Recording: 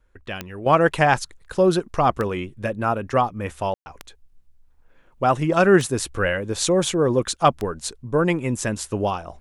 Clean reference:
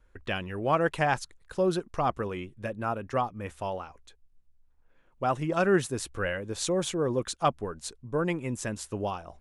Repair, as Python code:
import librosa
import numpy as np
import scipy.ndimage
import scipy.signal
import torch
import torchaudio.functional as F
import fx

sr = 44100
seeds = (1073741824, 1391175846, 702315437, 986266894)

y = fx.fix_declick_ar(x, sr, threshold=10.0)
y = fx.fix_ambience(y, sr, seeds[0], print_start_s=4.66, print_end_s=5.16, start_s=3.74, end_s=3.86)
y = fx.gain(y, sr, db=fx.steps((0.0, 0.0), (0.66, -8.5)))